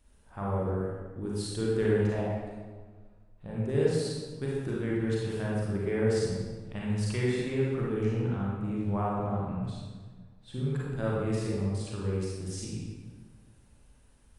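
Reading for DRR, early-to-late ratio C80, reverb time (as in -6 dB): -6.0 dB, 0.5 dB, 1.5 s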